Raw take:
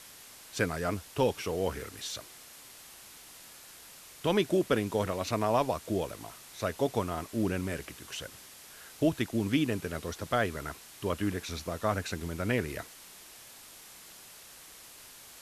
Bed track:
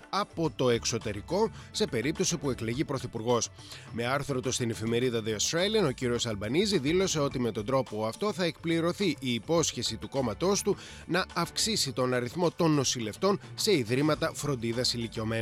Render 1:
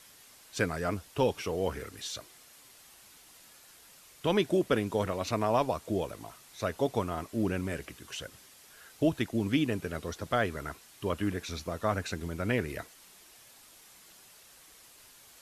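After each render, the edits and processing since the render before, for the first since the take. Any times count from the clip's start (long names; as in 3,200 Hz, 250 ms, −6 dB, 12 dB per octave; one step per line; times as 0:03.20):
broadband denoise 6 dB, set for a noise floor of −51 dBFS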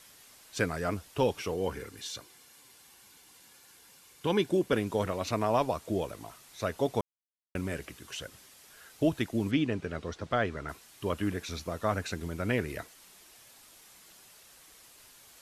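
0:01.54–0:04.73: notch comb filter 640 Hz
0:07.01–0:07.55: silence
0:09.51–0:10.69: high-frequency loss of the air 89 metres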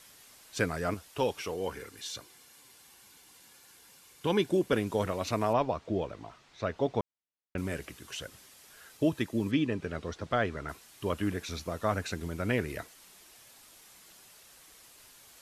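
0:00.94–0:02.07: low-shelf EQ 350 Hz −6.5 dB
0:05.53–0:07.58: high-frequency loss of the air 150 metres
0:08.97–0:09.81: notch comb filter 720 Hz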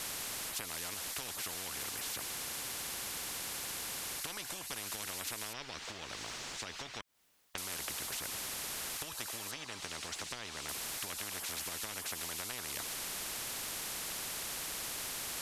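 downward compressor 16 to 1, threshold −36 dBFS, peak gain reduction 16 dB
every bin compressed towards the loudest bin 10 to 1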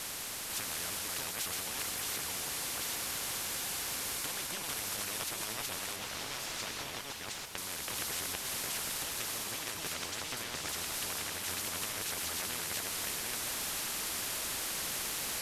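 delay that plays each chunk backwards 497 ms, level 0 dB
feedback delay with all-pass diffusion 1,265 ms, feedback 72%, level −11 dB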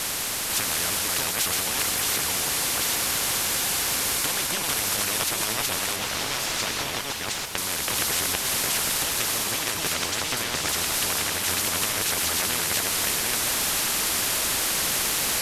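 level +12 dB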